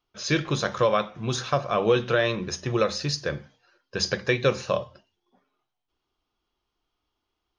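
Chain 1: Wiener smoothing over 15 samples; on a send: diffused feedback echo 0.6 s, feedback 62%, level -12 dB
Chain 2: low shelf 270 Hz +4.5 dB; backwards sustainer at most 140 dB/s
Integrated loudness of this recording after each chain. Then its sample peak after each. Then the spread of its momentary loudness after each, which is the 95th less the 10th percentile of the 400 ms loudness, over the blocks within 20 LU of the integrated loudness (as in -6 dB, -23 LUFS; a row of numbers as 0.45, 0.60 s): -26.5, -24.0 LUFS; -9.5, -8.0 dBFS; 18, 7 LU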